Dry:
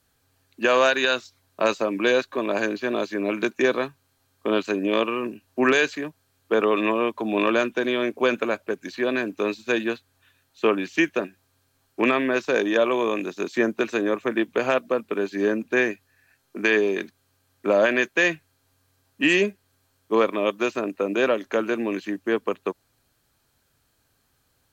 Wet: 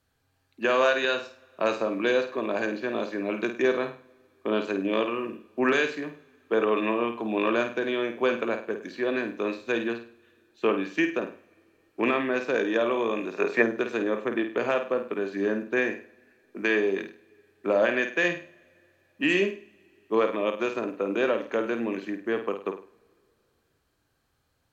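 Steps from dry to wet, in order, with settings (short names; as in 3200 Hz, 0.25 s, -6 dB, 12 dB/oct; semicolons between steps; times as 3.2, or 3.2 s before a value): on a send: flutter echo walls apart 8.8 m, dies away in 0.38 s; on the sum: spectral gain 13.34–13.62, 400–2800 Hz +9 dB; high shelf 5500 Hz -9.5 dB; two-slope reverb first 0.32 s, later 3.1 s, from -20 dB, DRR 18 dB; gain -4 dB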